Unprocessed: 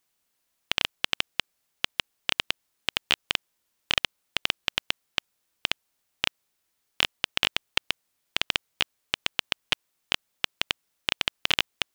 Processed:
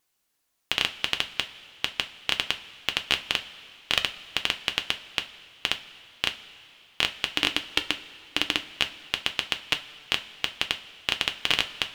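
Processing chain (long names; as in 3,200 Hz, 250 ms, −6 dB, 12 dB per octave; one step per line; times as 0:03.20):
pitch vibrato 4.4 Hz 18 cents
0:07.26–0:08.70: parametric band 300 Hz +12 dB 0.42 octaves
coupled-rooms reverb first 0.22 s, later 2.8 s, from −18 dB, DRR 6 dB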